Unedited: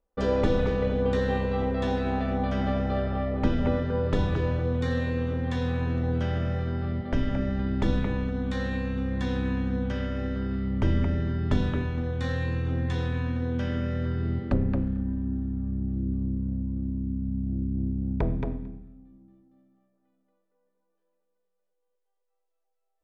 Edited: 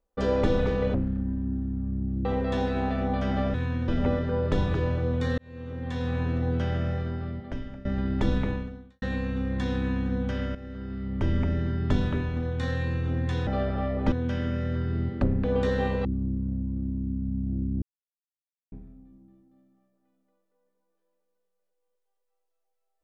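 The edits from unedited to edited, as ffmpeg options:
ffmpeg -i in.wav -filter_complex "[0:a]asplit=15[link_01][link_02][link_03][link_04][link_05][link_06][link_07][link_08][link_09][link_10][link_11][link_12][link_13][link_14][link_15];[link_01]atrim=end=0.942[link_16];[link_02]atrim=start=14.738:end=16.052[link_17];[link_03]atrim=start=1.548:end=2.842[link_18];[link_04]atrim=start=13.078:end=13.422[link_19];[link_05]atrim=start=3.488:end=4.99,asetpts=PTS-STARTPTS,afade=type=out:start_time=1.498:duration=0.004:curve=hsin[link_20];[link_06]atrim=start=4.99:end=7.46,asetpts=PTS-STARTPTS,afade=type=in:duration=0.8,afade=type=out:start_time=1.5:duration=0.97:silence=0.11885[link_21];[link_07]atrim=start=7.46:end=8.63,asetpts=PTS-STARTPTS,afade=type=in:duration=0.004:curve=hsin:silence=0.11885,afade=type=out:start_time=0.64:duration=0.53:curve=qua[link_22];[link_08]atrim=start=8.63:end=10.16,asetpts=PTS-STARTPTS,afade=type=in:duration=0.004:curve=hsin,afade=type=out:start_time=1.526:duration=0.004:curve=hsin:silence=0.237137[link_23];[link_09]atrim=start=10.16:end=13.082,asetpts=PTS-STARTPTS,afade=type=in:duration=0.97:silence=0.237137[link_24];[link_10]atrim=start=2.838:end=3.492[link_25];[link_11]atrim=start=13.418:end=14.742[link_26];[link_12]atrim=start=0.938:end=1.552[link_27];[link_13]atrim=start=16.048:end=17.82,asetpts=PTS-STARTPTS,afade=type=out:start_time=1.768:duration=0.004:curve=hsin[link_28];[link_14]atrim=start=17.82:end=18.72,asetpts=PTS-STARTPTS,volume=0[link_29];[link_15]atrim=start=18.72,asetpts=PTS-STARTPTS,afade=type=in:duration=0.004:curve=hsin[link_30];[link_16][link_17]acrossfade=duration=0.004:curve1=hsin:curve2=hsin[link_31];[link_31][link_18]acrossfade=duration=0.004:curve1=hsin:curve2=hsin[link_32];[link_32][link_19]acrossfade=duration=0.004:curve1=hsin:curve2=hsin[link_33];[link_20][link_21][link_22][link_23][link_24]concat=n=5:v=0:a=1[link_34];[link_33][link_34]acrossfade=duration=0.004:curve1=hsin:curve2=hsin[link_35];[link_35][link_25]acrossfade=duration=0.004:curve1=hsin:curve2=hsin[link_36];[link_36][link_26]acrossfade=duration=0.004:curve1=hsin:curve2=hsin[link_37];[link_37][link_27]acrossfade=duration=0.004:curve1=hsin:curve2=hsin[link_38];[link_28][link_29][link_30]concat=n=3:v=0:a=1[link_39];[link_38][link_39]acrossfade=duration=0.004:curve1=hsin:curve2=hsin" out.wav

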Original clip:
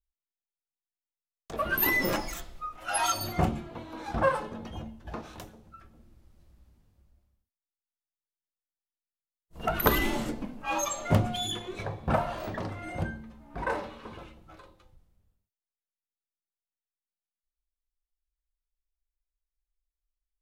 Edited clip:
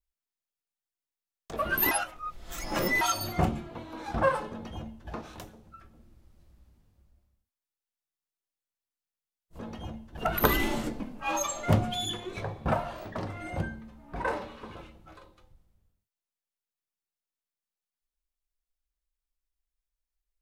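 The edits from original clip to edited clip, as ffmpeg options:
ffmpeg -i in.wav -filter_complex "[0:a]asplit=6[link_01][link_02][link_03][link_04][link_05][link_06];[link_01]atrim=end=1.912[link_07];[link_02]atrim=start=1.908:end=3.012,asetpts=PTS-STARTPTS,areverse[link_08];[link_03]atrim=start=3.008:end=9.592[link_09];[link_04]atrim=start=4.508:end=5.092[link_10];[link_05]atrim=start=9.588:end=12.57,asetpts=PTS-STARTPTS,afade=type=out:start_time=2.412:duration=0.57:silence=0.446684[link_11];[link_06]atrim=start=12.57,asetpts=PTS-STARTPTS,afade=type=in:duration=0.004:curve=hsin:silence=0.446684[link_12];[link_07][link_08]acrossfade=duration=0.004:curve1=hsin:curve2=hsin[link_13];[link_13][link_09]acrossfade=duration=0.004:curve1=hsin:curve2=hsin[link_14];[link_14][link_10]acrossfade=duration=0.004:curve1=hsin:curve2=hsin[link_15];[link_11][link_12]concat=n=2:v=0:a=1[link_16];[link_15][link_16]acrossfade=duration=0.004:curve1=hsin:curve2=hsin" out.wav

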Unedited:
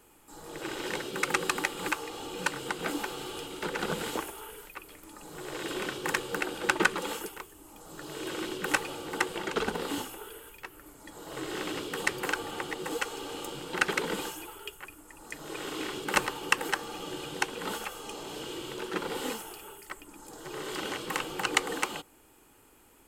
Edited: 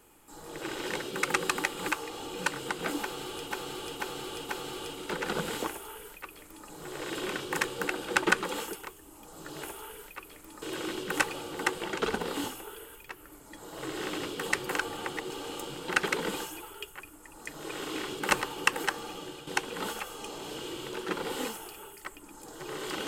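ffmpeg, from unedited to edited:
ffmpeg -i in.wav -filter_complex "[0:a]asplit=8[link_01][link_02][link_03][link_04][link_05][link_06][link_07][link_08];[link_01]atrim=end=3.512[link_09];[link_02]atrim=start=3.018:end=3.512[link_10];[link_03]atrim=start=3.018:end=3.512[link_11];[link_04]atrim=start=3.018:end=8.162[link_12];[link_05]atrim=start=4.218:end=5.212[link_13];[link_06]atrim=start=8.158:end=12.842[link_14];[link_07]atrim=start=13.148:end=17.32,asetpts=PTS-STARTPTS,afade=type=out:start_time=3.732:duration=0.44:silence=0.375837[link_15];[link_08]atrim=start=17.32,asetpts=PTS-STARTPTS,afade=type=in:duration=0.004:curve=hsin:silence=0.375837[link_16];[link_09][link_10]acrossfade=duration=0.004:curve1=hsin:curve2=hsin[link_17];[link_17][link_11]acrossfade=duration=0.004:curve1=hsin:curve2=hsin[link_18];[link_18][link_12]acrossfade=duration=0.004:curve1=hsin:curve2=hsin[link_19];[link_19][link_13]acrossfade=duration=0.004:curve1=hsin:curve2=hsin[link_20];[link_20][link_14]acrossfade=duration=0.004:curve1=hsin:curve2=hsin[link_21];[link_15][link_16]concat=n=2:v=0:a=1[link_22];[link_21][link_22]acrossfade=duration=0.004:curve1=hsin:curve2=hsin" out.wav

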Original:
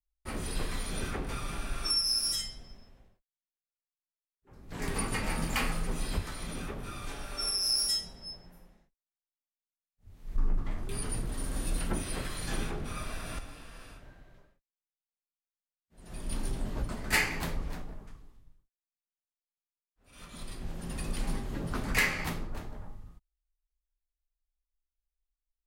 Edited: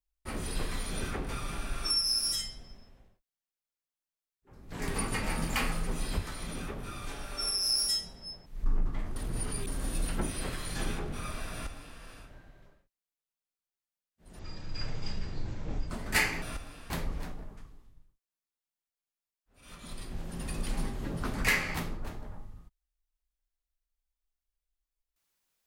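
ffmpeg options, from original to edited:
ffmpeg -i in.wav -filter_complex "[0:a]asplit=8[link_01][link_02][link_03][link_04][link_05][link_06][link_07][link_08];[link_01]atrim=end=8.462[link_09];[link_02]atrim=start=10.178:end=10.882[link_10];[link_03]atrim=start=10.878:end=11.392,asetpts=PTS-STARTPTS,areverse[link_11];[link_04]atrim=start=11.388:end=16.114[link_12];[link_05]atrim=start=16.11:end=16.88,asetpts=PTS-STARTPTS,asetrate=22491,aresample=44100,atrim=end_sample=66582,asetpts=PTS-STARTPTS[link_13];[link_06]atrim=start=16.876:end=17.402[link_14];[link_07]atrim=start=13.238:end=13.722[link_15];[link_08]atrim=start=17.398[link_16];[link_09][link_10]acrossfade=duration=0.004:curve1=hsin:curve2=hsin[link_17];[link_17][link_11]acrossfade=duration=0.004:curve1=hsin:curve2=hsin[link_18];[link_18][link_12]acrossfade=duration=0.004:curve1=hsin:curve2=hsin[link_19];[link_19][link_13]acrossfade=duration=0.004:curve1=hsin:curve2=hsin[link_20];[link_20][link_14]acrossfade=duration=0.004:curve1=hsin:curve2=hsin[link_21];[link_21][link_15]acrossfade=duration=0.004:curve1=hsin:curve2=hsin[link_22];[link_22][link_16]acrossfade=duration=0.004:curve1=hsin:curve2=hsin" out.wav

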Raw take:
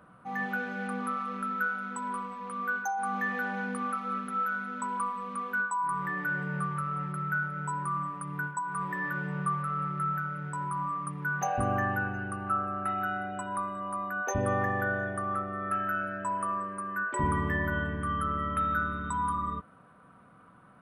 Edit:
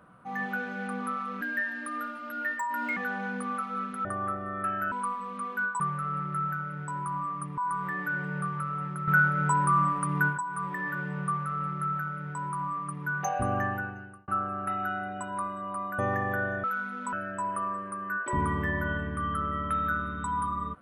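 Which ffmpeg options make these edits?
ffmpeg -i in.wav -filter_complex "[0:a]asplit=13[link_01][link_02][link_03][link_04][link_05][link_06][link_07][link_08][link_09][link_10][link_11][link_12][link_13];[link_01]atrim=end=1.414[link_14];[link_02]atrim=start=1.41:end=3.31,asetpts=PTS-STARTPTS,asetrate=53802,aresample=44100,atrim=end_sample=68680,asetpts=PTS-STARTPTS[link_15];[link_03]atrim=start=3.306:end=4.392[link_16];[link_04]atrim=start=15.118:end=15.992[link_17];[link_05]atrim=start=4.878:end=5.762[link_18];[link_06]atrim=start=9.448:end=11.232[link_19];[link_07]atrim=start=5.758:end=7.262[link_20];[link_08]atrim=start=7.258:end=8.562,asetpts=PTS-STARTPTS,volume=8.5dB[link_21];[link_09]atrim=start=8.558:end=12.46,asetpts=PTS-STARTPTS,afade=type=out:start_time=3.232:duration=0.67[link_22];[link_10]atrim=start=12.46:end=14.172,asetpts=PTS-STARTPTS,afade=type=in:duration=0.004:curve=hsin[link_23];[link_11]atrim=start=14.468:end=15.122[link_24];[link_12]atrim=start=4.388:end=4.882[link_25];[link_13]atrim=start=15.988[link_26];[link_14][link_15]acrossfade=duration=0.004:curve1=hsin:curve2=hsin[link_27];[link_27][link_16]acrossfade=duration=0.004:curve1=hsin:curve2=hsin[link_28];[link_28][link_17]acrossfade=duration=0.004:curve1=hsin:curve2=hsin[link_29];[link_29][link_18]acrossfade=duration=0.004:curve1=hsin:curve2=hsin[link_30];[link_30][link_19]acrossfade=duration=0.004:curve1=hsin:curve2=hsin[link_31];[link_31][link_20]acrossfade=duration=0.004:curve1=hsin:curve2=hsin[link_32];[link_32][link_21]acrossfade=duration=0.004:curve1=hsin:curve2=hsin[link_33];[link_22][link_23]concat=n=2:v=0:a=1[link_34];[link_33][link_34]acrossfade=duration=0.004:curve1=hsin:curve2=hsin[link_35];[link_35][link_24]acrossfade=duration=0.004:curve1=hsin:curve2=hsin[link_36];[link_36][link_25]acrossfade=duration=0.004:curve1=hsin:curve2=hsin[link_37];[link_37][link_26]acrossfade=duration=0.004:curve1=hsin:curve2=hsin" out.wav

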